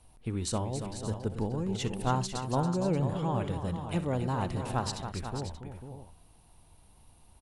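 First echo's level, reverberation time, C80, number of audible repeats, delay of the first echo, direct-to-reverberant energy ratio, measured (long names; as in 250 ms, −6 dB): −16.5 dB, no reverb audible, no reverb audible, 4, 63 ms, no reverb audible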